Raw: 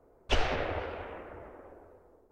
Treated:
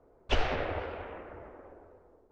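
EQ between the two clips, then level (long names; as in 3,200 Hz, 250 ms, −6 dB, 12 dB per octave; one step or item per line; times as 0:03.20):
high-frequency loss of the air 74 metres
0.0 dB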